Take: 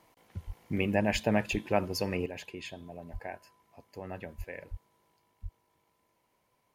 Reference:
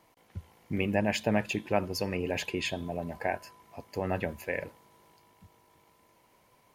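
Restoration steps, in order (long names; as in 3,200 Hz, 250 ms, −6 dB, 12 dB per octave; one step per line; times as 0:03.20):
high-pass at the plosives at 0:00.46/0:01.12/0:01.51/0:03.12/0:04.37/0:04.70/0:05.42
level correction +10 dB, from 0:02.26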